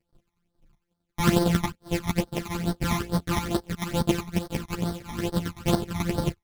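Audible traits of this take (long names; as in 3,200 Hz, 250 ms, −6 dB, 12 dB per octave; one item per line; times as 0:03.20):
a buzz of ramps at a fixed pitch in blocks of 256 samples
phaser sweep stages 12, 2.3 Hz, lowest notch 470–2,500 Hz
chopped level 11 Hz, depth 65%, duty 10%
a shimmering, thickened sound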